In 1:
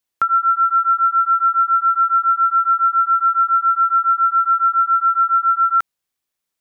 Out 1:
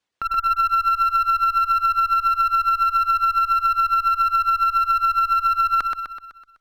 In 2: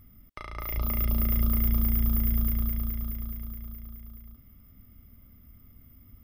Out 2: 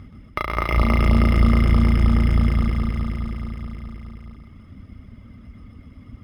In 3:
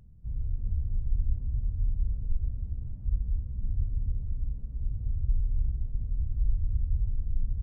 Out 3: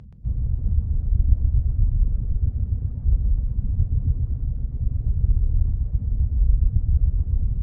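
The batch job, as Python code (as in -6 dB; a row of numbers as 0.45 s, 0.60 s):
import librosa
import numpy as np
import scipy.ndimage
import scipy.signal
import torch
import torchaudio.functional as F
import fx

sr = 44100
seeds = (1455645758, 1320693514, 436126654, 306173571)

y = fx.dereverb_blind(x, sr, rt60_s=0.78)
y = fx.highpass(y, sr, hz=74.0, slope=6)
y = fx.dereverb_blind(y, sr, rt60_s=0.66)
y = fx.over_compress(y, sr, threshold_db=-20.0, ratio=-0.5)
y = fx.clip_asym(y, sr, top_db=-25.0, bottom_db=-18.0)
y = fx.air_absorb(y, sr, metres=69.0)
y = fx.echo_feedback(y, sr, ms=126, feedback_pct=52, wet_db=-4)
y = np.interp(np.arange(len(y)), np.arange(len(y))[::3], y[::3])
y = y * 10.0 ** (-20 / 20.0) / np.sqrt(np.mean(np.square(y)))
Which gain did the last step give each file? +2.0 dB, +17.5 dB, +15.0 dB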